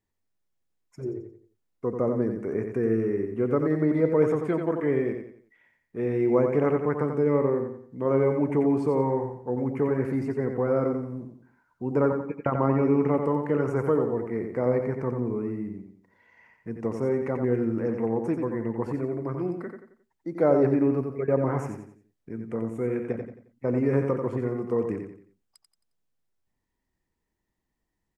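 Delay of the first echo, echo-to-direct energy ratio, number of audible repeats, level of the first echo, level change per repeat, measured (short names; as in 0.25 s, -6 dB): 89 ms, -5.5 dB, 4, -6.0 dB, -8.5 dB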